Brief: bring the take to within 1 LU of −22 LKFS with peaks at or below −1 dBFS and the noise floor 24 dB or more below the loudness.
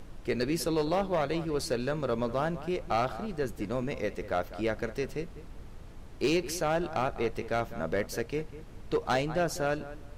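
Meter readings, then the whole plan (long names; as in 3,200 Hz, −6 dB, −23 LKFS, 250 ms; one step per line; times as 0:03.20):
share of clipped samples 0.7%; peaks flattened at −21.0 dBFS; background noise floor −46 dBFS; target noise floor −56 dBFS; integrated loudness −31.5 LKFS; sample peak −21.0 dBFS; target loudness −22.0 LKFS
→ clipped peaks rebuilt −21 dBFS
noise reduction from a noise print 10 dB
level +9.5 dB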